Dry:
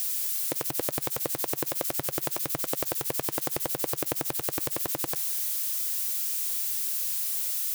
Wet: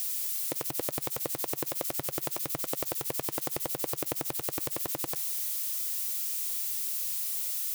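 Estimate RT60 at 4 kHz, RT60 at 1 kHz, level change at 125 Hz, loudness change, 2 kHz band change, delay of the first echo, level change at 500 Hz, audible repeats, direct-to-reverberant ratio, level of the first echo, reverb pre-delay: none, none, -3.0 dB, -3.0 dB, -4.0 dB, none, -3.0 dB, none, none, none, none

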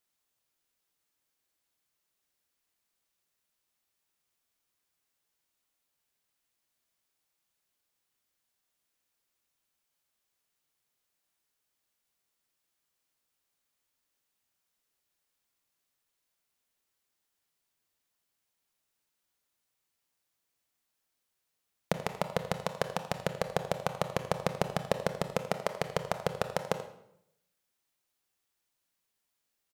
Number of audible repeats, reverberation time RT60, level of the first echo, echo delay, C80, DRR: 1, 0.75 s, -15.0 dB, 84 ms, 11.5 dB, 8.0 dB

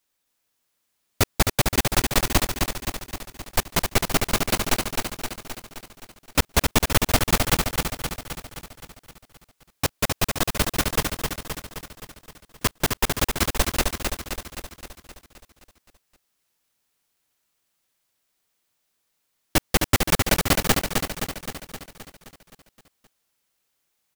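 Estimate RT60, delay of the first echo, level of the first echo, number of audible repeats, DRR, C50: none, 0.261 s, -4.5 dB, 7, none, none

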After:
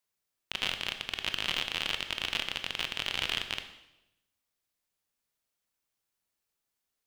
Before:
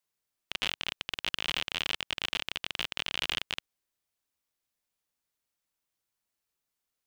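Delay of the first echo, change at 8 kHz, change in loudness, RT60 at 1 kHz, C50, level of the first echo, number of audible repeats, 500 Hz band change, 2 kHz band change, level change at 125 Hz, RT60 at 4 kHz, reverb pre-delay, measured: none, +0.5 dB, +0.5 dB, 0.85 s, 10.0 dB, none, none, +1.0 dB, +1.0 dB, +1.5 dB, 0.85 s, 19 ms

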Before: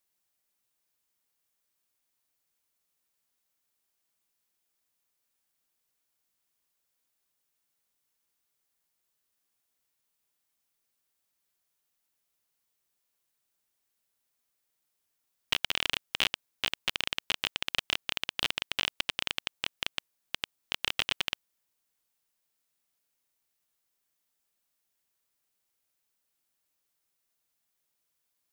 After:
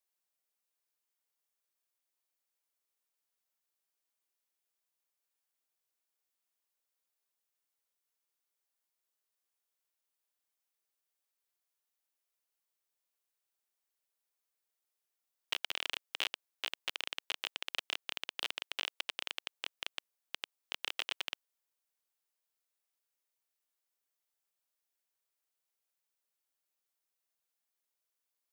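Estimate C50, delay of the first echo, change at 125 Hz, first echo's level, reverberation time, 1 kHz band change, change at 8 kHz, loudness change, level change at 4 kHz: none, none, under -25 dB, none, none, -7.0 dB, -7.5 dB, -7.5 dB, -7.5 dB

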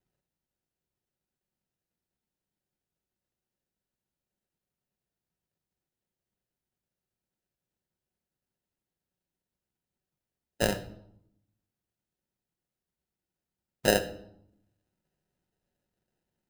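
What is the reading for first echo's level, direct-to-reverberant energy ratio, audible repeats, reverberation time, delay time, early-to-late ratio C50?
none, 8.0 dB, none, 0.75 s, none, 13.5 dB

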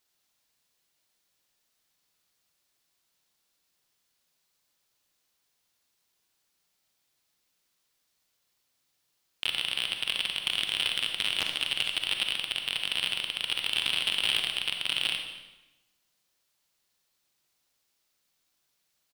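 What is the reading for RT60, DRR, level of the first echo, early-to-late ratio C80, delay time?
1.0 s, 4.0 dB, -19.5 dB, 7.0 dB, 0.232 s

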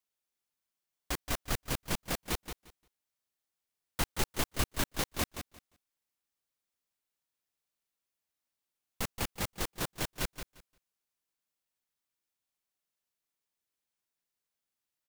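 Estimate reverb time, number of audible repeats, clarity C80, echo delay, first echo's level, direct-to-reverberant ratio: none, 2, none, 0.175 s, -9.0 dB, none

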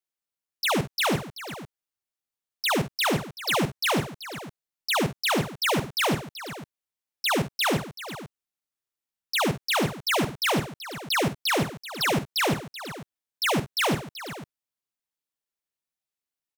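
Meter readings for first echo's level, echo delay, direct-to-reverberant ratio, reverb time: -11.5 dB, 50 ms, none, none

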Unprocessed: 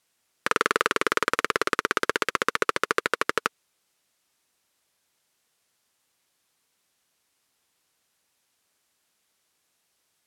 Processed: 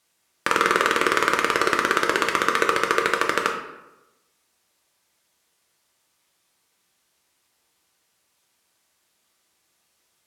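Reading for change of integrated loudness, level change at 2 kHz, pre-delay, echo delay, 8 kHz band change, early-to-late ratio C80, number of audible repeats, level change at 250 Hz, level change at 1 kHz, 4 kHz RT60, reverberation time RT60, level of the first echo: +4.5 dB, +4.0 dB, 3 ms, none, +3.5 dB, 8.0 dB, none, +5.5 dB, +5.0 dB, 0.60 s, 0.95 s, none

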